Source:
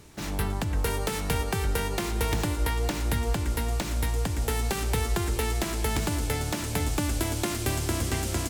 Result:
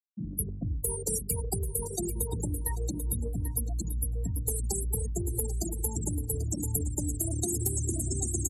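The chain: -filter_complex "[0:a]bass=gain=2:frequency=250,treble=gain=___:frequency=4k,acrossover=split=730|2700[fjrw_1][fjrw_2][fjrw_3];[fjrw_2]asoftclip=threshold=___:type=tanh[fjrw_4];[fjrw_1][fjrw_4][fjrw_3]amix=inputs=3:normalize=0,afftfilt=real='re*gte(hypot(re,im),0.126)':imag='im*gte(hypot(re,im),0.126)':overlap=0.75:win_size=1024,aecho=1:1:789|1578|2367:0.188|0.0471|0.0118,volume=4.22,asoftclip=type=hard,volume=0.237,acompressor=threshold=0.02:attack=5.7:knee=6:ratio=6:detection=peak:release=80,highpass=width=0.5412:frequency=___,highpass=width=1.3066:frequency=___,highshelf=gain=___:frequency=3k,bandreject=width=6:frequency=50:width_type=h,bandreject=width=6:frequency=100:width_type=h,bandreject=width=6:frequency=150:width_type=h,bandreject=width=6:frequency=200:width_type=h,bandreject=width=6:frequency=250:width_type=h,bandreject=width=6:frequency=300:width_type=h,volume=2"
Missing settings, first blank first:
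13, 0.0282, 52, 52, 3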